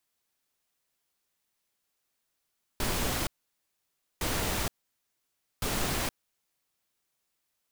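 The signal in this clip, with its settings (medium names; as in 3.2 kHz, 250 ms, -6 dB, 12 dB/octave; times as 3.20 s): noise bursts pink, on 0.47 s, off 0.94 s, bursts 3, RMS -30 dBFS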